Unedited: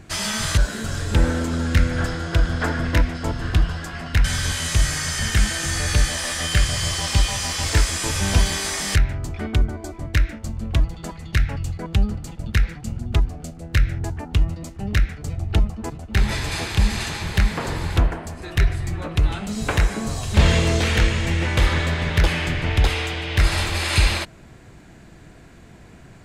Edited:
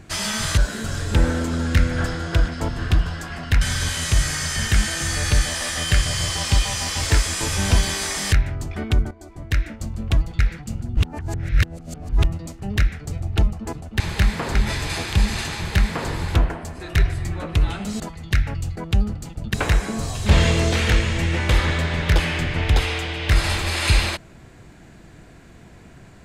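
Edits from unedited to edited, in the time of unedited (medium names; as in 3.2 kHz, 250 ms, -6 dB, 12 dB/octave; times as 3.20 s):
2.48–3.11 s: delete
9.74–10.36 s: fade in, from -14.5 dB
11.02–12.56 s: move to 19.62 s
13.14–14.41 s: reverse
17.18–17.73 s: copy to 16.17 s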